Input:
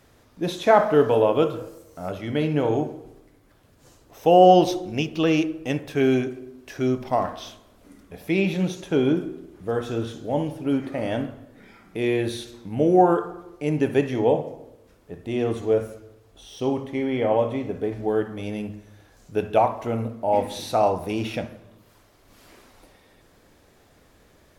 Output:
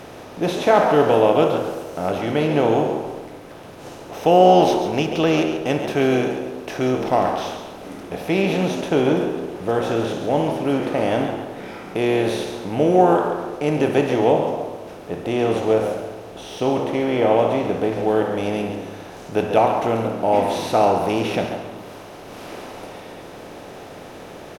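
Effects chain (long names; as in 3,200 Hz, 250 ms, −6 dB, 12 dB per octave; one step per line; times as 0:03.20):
compressor on every frequency bin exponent 0.6
echo with shifted repeats 138 ms, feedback 30%, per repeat +75 Hz, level −9 dB
level −1 dB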